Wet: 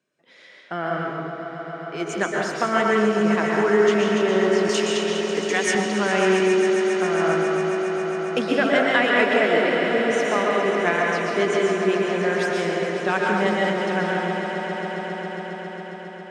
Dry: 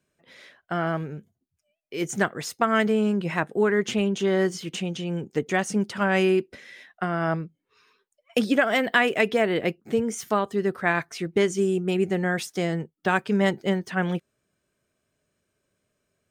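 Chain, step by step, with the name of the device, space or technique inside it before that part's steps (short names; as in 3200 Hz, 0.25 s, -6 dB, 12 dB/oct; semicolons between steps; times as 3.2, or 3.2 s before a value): supermarket ceiling speaker (BPF 210–6600 Hz; reverb RT60 1.5 s, pre-delay 0.112 s, DRR -1.5 dB); 4.69–5.75 tilt +4 dB/oct; swelling echo 0.136 s, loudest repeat 5, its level -12.5 dB; gain -1 dB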